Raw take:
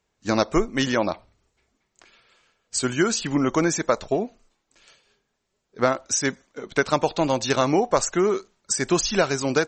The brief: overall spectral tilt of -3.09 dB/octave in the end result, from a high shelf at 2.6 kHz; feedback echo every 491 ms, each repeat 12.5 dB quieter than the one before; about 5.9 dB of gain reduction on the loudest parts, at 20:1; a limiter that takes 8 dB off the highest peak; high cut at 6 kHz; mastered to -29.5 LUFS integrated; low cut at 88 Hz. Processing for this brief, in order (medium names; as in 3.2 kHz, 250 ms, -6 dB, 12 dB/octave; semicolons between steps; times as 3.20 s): high-pass 88 Hz; low-pass 6 kHz; treble shelf 2.6 kHz +6 dB; compression 20:1, threshold -20 dBFS; peak limiter -15.5 dBFS; feedback delay 491 ms, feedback 24%, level -12.5 dB; trim -1.5 dB